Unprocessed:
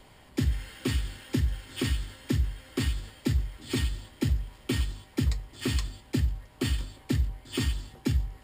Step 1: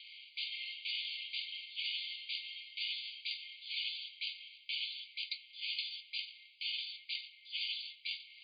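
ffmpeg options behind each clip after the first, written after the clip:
-af "afftfilt=real='re*between(b*sr/4096,2100,4800)':imag='im*between(b*sr/4096,2100,4800)':win_size=4096:overlap=0.75,areverse,acompressor=threshold=0.00398:ratio=5,areverse,volume=3.35"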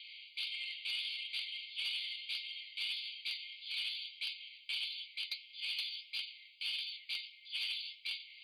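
-af "flanger=delay=6.2:depth=5.1:regen=54:speed=1.6:shape=sinusoidal,asoftclip=type=tanh:threshold=0.0178,volume=1.88"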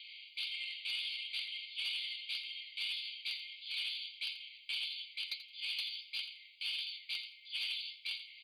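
-af "aecho=1:1:84|168:0.224|0.0448"

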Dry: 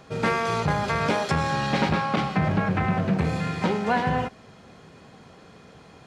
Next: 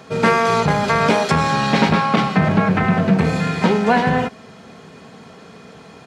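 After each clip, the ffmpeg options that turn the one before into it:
-af "highpass=93,aecho=1:1:4.5:0.31,volume=2.37"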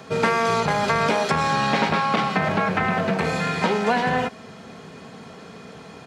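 -filter_complex "[0:a]acrossover=split=410|2600[s0][s1][s2];[s0]acompressor=threshold=0.0447:ratio=4[s3];[s1]acompressor=threshold=0.112:ratio=4[s4];[s2]acompressor=threshold=0.0251:ratio=4[s5];[s3][s4][s5]amix=inputs=3:normalize=0"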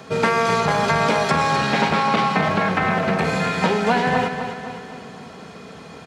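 -af "aecho=1:1:255|510|765|1020|1275|1530:0.376|0.192|0.0978|0.0499|0.0254|0.013,volume=1.19"

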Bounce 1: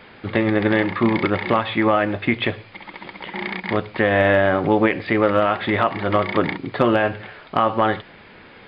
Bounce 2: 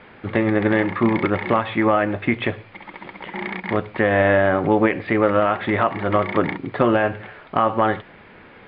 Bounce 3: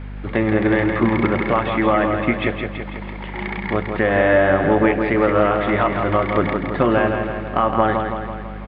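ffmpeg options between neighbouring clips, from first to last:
-af "lowpass=2600"
-filter_complex "[0:a]aeval=exprs='val(0)+0.0316*(sin(2*PI*50*n/s)+sin(2*PI*2*50*n/s)/2+sin(2*PI*3*50*n/s)/3+sin(2*PI*4*50*n/s)/4+sin(2*PI*5*50*n/s)/5)':c=same,asplit=2[s0][s1];[s1]aecho=0:1:165|330|495|660|825|990|1155|1320:0.501|0.291|0.169|0.0978|0.0567|0.0329|0.0191|0.0111[s2];[s0][s2]amix=inputs=2:normalize=0"

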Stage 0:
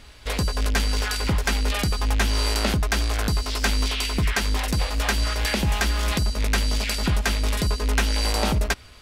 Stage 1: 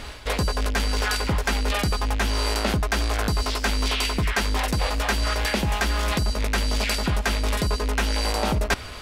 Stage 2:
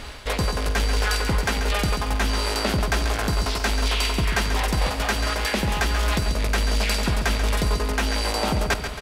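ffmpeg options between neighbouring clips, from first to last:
-af "equalizer=f=750:t=o:w=2.9:g=5,areverse,acompressor=threshold=0.0316:ratio=6,areverse,volume=2.82"
-af "aecho=1:1:137|274|411|548|685|822:0.376|0.199|0.106|0.056|0.0297|0.0157"

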